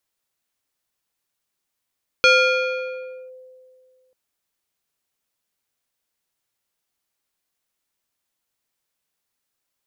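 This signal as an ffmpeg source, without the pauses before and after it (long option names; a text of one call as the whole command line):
ffmpeg -f lavfi -i "aevalsrc='0.355*pow(10,-3*t/2.18)*sin(2*PI*513*t+1.6*clip(1-t/1.07,0,1)*sin(2*PI*3.73*513*t))':duration=1.89:sample_rate=44100" out.wav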